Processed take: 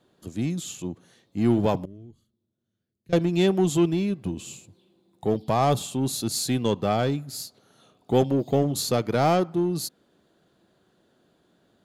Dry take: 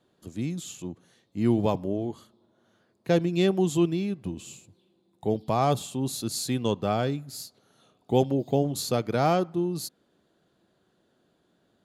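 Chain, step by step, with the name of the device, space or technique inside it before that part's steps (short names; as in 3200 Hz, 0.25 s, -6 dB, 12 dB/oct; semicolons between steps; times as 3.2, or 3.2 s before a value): parallel distortion (in parallel at -5 dB: hard clip -25.5 dBFS, distortion -6 dB); 1.85–3.13 on the sum: passive tone stack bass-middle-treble 10-0-1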